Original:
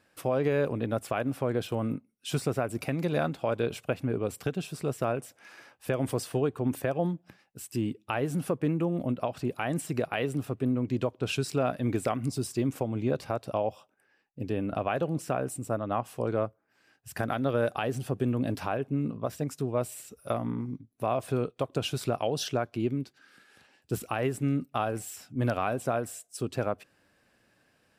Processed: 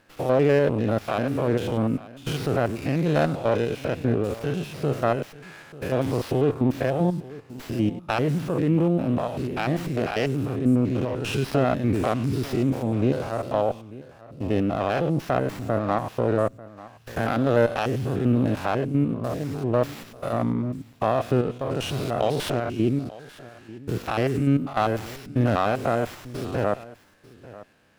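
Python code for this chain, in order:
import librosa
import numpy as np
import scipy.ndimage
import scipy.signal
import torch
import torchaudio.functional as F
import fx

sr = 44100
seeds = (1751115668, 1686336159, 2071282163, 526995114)

y = fx.spec_steps(x, sr, hold_ms=100)
y = y + 10.0 ** (-18.5 / 20.0) * np.pad(y, (int(892 * sr / 1000.0), 0))[:len(y)]
y = fx.running_max(y, sr, window=5)
y = y * 10.0 ** (8.5 / 20.0)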